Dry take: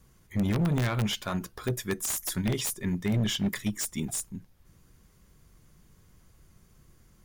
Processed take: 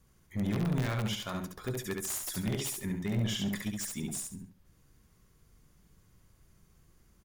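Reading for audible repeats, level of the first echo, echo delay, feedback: 3, -3.5 dB, 69 ms, 27%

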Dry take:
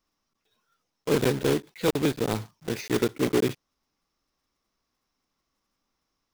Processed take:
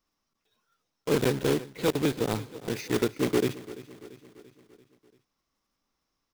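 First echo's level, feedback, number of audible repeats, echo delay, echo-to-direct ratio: -17.0 dB, 55%, 4, 340 ms, -15.5 dB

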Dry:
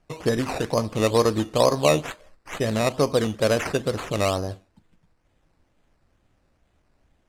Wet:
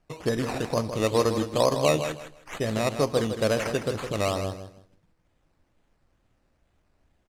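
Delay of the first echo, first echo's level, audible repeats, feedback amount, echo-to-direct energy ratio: 159 ms, -9.0 dB, 2, 22%, -9.0 dB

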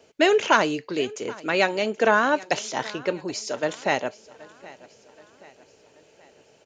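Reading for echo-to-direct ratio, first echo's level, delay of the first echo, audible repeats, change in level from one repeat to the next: -20.0 dB, -21.0 dB, 776 ms, 3, -6.0 dB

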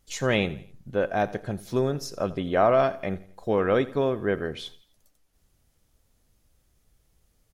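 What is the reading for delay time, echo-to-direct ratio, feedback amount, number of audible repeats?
85 ms, -17.5 dB, 43%, 3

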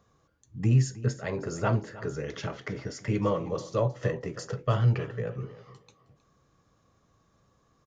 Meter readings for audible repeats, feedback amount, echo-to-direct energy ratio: 2, 17%, -17.5 dB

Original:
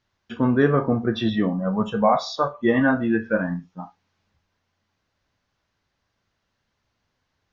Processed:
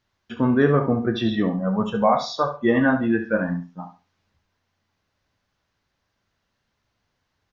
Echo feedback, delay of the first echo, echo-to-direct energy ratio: 20%, 69 ms, -11.0 dB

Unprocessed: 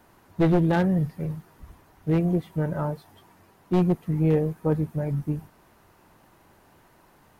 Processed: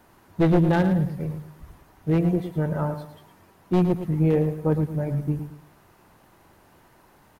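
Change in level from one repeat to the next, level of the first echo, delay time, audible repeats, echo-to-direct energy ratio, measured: -10.0 dB, -10.0 dB, 111 ms, 3, -9.5 dB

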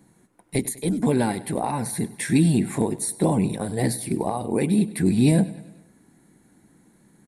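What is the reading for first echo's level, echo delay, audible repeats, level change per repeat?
-18.0 dB, 99 ms, 4, -5.5 dB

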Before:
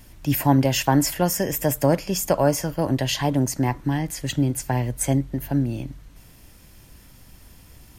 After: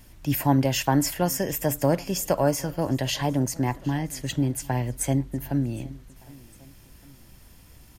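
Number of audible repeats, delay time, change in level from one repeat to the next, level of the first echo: 2, 759 ms, -5.0 dB, -23.0 dB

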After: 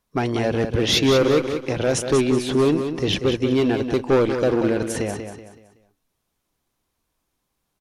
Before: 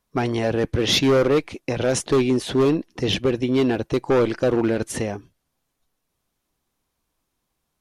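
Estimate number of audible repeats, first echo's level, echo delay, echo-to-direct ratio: 4, -8.0 dB, 188 ms, -7.5 dB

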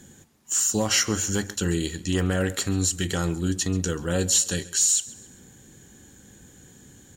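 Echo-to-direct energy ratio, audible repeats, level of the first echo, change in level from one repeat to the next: -19.0 dB, 2, -20.0 dB, -7.5 dB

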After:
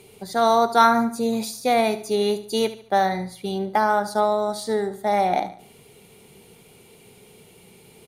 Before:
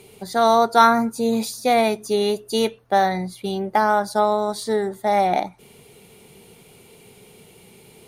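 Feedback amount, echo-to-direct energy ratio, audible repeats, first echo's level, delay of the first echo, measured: 38%, -13.5 dB, 3, -14.0 dB, 73 ms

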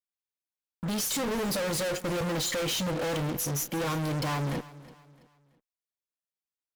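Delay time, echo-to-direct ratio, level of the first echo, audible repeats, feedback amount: 331 ms, -18.0 dB, -18.5 dB, 2, 37%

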